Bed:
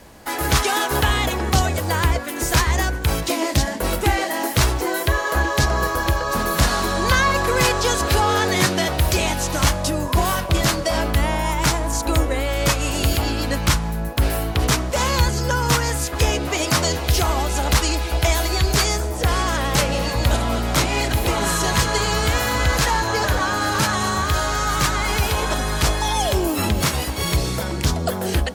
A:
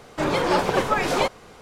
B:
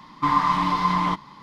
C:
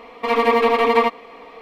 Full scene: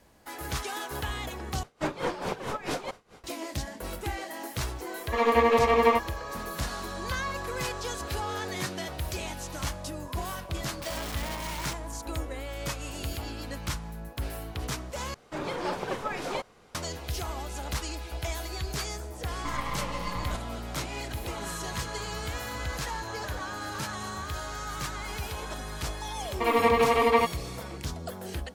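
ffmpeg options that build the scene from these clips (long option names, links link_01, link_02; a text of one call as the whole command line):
ffmpeg -i bed.wav -i cue0.wav -i cue1.wav -i cue2.wav -filter_complex "[1:a]asplit=2[link_01][link_02];[3:a]asplit=2[link_03][link_04];[2:a]asplit=2[link_05][link_06];[0:a]volume=-15dB[link_07];[link_01]aeval=exprs='val(0)*pow(10,-19*(0.5-0.5*cos(2*PI*4.6*n/s))/20)':channel_layout=same[link_08];[link_03]asplit=2[link_09][link_10];[link_10]adelay=13,volume=-3.5dB[link_11];[link_09][link_11]amix=inputs=2:normalize=0[link_12];[link_05]aeval=exprs='(mod(10*val(0)+1,2)-1)/10':channel_layout=same[link_13];[link_06]aeval=exprs='max(val(0),0)':channel_layout=same[link_14];[link_07]asplit=3[link_15][link_16][link_17];[link_15]atrim=end=1.634[link_18];[link_08]atrim=end=1.61,asetpts=PTS-STARTPTS,volume=-3.5dB[link_19];[link_16]atrim=start=3.236:end=15.144[link_20];[link_02]atrim=end=1.61,asetpts=PTS-STARTPTS,volume=-11dB[link_21];[link_17]atrim=start=16.746[link_22];[link_12]atrim=end=1.61,asetpts=PTS-STARTPTS,volume=-9dB,afade=type=in:duration=0.004:curve=hsin,afade=type=out:start_time=1.606:duration=0.004:curve=hsin,adelay=215649S[link_23];[link_13]atrim=end=1.42,asetpts=PTS-STARTPTS,volume=-15dB,afade=type=in:duration=0.004:curve=hsin,afade=type=out:start_time=1.416:duration=0.004:curve=hsin,adelay=10590[link_24];[link_14]atrim=end=1.42,asetpts=PTS-STARTPTS,volume=-10.5dB,afade=type=in:duration=0.004:curve=hsin,afade=type=out:start_time=1.416:duration=0.004:curve=hsin,adelay=19220[link_25];[link_04]atrim=end=1.61,asetpts=PTS-STARTPTS,volume=-6dB,afade=type=in:duration=0.004:curve=hsin,afade=type=out:start_time=1.606:duration=0.004:curve=hsin,adelay=26170[link_26];[link_18][link_19]acrossfade=duration=0.004:curve1=hsin:curve2=hsin[link_27];[link_27][link_20]acrossfade=duration=0.004:curve1=hsin:curve2=hsin[link_28];[link_28][link_21]acrossfade=duration=0.004:curve1=hsin:curve2=hsin[link_29];[link_29][link_22]acrossfade=duration=0.004:curve1=hsin:curve2=hsin[link_30];[link_30][link_23][link_24][link_25][link_26]amix=inputs=5:normalize=0" out.wav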